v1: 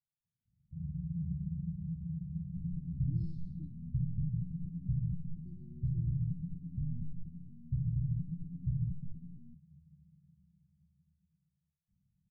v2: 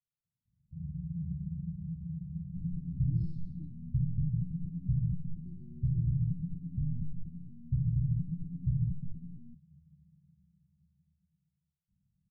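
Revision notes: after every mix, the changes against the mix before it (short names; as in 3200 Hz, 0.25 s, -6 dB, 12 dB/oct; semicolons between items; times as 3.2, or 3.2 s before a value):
second sound +3.5 dB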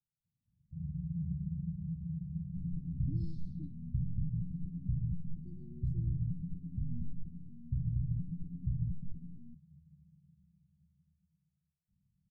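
speech +5.5 dB; second sound: add bell 140 Hz -9 dB 0.45 oct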